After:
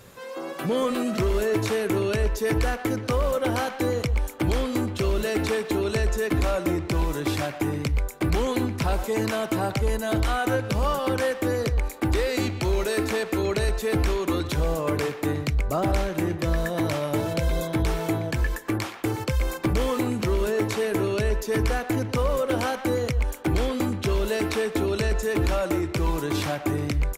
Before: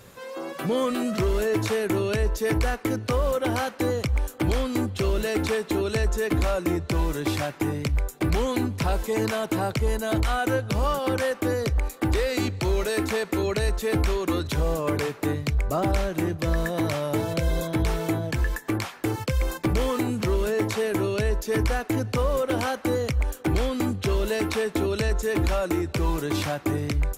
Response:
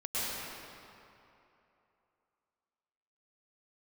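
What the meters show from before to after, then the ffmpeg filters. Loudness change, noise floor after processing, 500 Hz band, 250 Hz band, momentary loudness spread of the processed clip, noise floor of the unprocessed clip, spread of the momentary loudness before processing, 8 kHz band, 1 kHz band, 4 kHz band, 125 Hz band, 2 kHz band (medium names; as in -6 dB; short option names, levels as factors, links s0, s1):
0.0 dB, -37 dBFS, +0.5 dB, 0.0 dB, 3 LU, -43 dBFS, 3 LU, 0.0 dB, +0.5 dB, 0.0 dB, 0.0 dB, +0.5 dB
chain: -filter_complex "[0:a]asplit=2[s0][s1];[s1]adelay=120,highpass=300,lowpass=3400,asoftclip=type=hard:threshold=0.0668,volume=0.355[s2];[s0][s2]amix=inputs=2:normalize=0"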